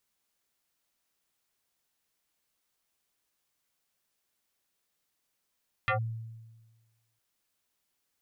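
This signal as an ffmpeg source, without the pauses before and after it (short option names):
-f lavfi -i "aevalsrc='0.0708*pow(10,-3*t/1.34)*sin(2*PI*113*t+4.1*clip(1-t/0.11,0,1)*sin(2*PI*5.69*113*t))':d=1.31:s=44100"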